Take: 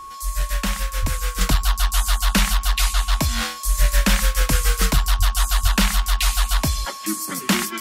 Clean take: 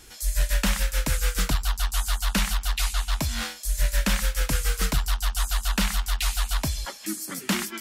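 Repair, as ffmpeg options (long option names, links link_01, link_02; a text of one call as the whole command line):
ffmpeg -i in.wav -filter_complex "[0:a]bandreject=frequency=1100:width=30,asplit=3[link_01][link_02][link_03];[link_01]afade=type=out:start_time=1.01:duration=0.02[link_04];[link_02]highpass=frequency=140:width=0.5412,highpass=frequency=140:width=1.3066,afade=type=in:start_time=1.01:duration=0.02,afade=type=out:start_time=1.13:duration=0.02[link_05];[link_03]afade=type=in:start_time=1.13:duration=0.02[link_06];[link_04][link_05][link_06]amix=inputs=3:normalize=0,asplit=3[link_07][link_08][link_09];[link_07]afade=type=out:start_time=5.18:duration=0.02[link_10];[link_08]highpass=frequency=140:width=0.5412,highpass=frequency=140:width=1.3066,afade=type=in:start_time=5.18:duration=0.02,afade=type=out:start_time=5.3:duration=0.02[link_11];[link_09]afade=type=in:start_time=5.3:duration=0.02[link_12];[link_10][link_11][link_12]amix=inputs=3:normalize=0,asplit=3[link_13][link_14][link_15];[link_13]afade=type=out:start_time=5.62:duration=0.02[link_16];[link_14]highpass=frequency=140:width=0.5412,highpass=frequency=140:width=1.3066,afade=type=in:start_time=5.62:duration=0.02,afade=type=out:start_time=5.74:duration=0.02[link_17];[link_15]afade=type=in:start_time=5.74:duration=0.02[link_18];[link_16][link_17][link_18]amix=inputs=3:normalize=0,asetnsamples=nb_out_samples=441:pad=0,asendcmd='1.41 volume volume -6dB',volume=0dB" out.wav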